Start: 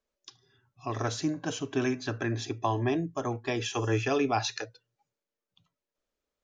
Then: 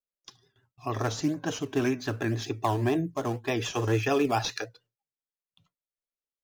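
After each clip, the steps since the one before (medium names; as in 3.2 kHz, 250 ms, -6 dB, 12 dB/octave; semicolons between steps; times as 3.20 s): gate with hold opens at -56 dBFS; in parallel at -11 dB: decimation with a swept rate 12×, swing 160% 1.9 Hz; on the sum: vibrato 6.9 Hz 61 cents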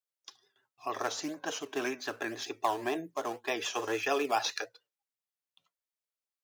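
high-pass 490 Hz 12 dB/octave; trim -1 dB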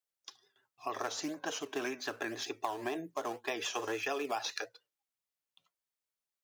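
compression 5:1, threshold -32 dBFS, peak gain reduction 8 dB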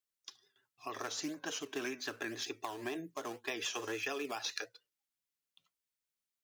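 peaking EQ 740 Hz -7.5 dB 1.4 oct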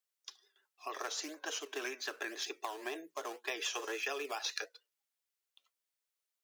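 high-pass 380 Hz 24 dB/octave; trim +1 dB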